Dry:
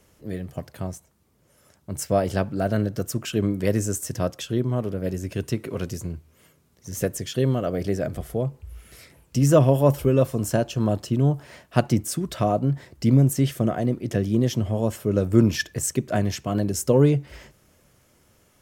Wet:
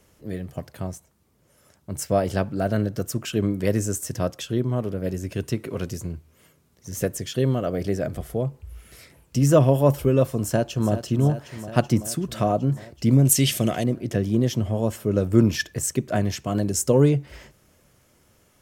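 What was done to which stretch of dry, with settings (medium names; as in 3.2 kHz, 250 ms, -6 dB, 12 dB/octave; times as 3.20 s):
10.42–10.92 s: echo throw 380 ms, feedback 75%, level -11 dB
13.25–13.84 s: high-order bell 5.3 kHz +12.5 dB 2.9 oct
16.44–17.09 s: peaking EQ 7.6 kHz +5.5 dB 0.82 oct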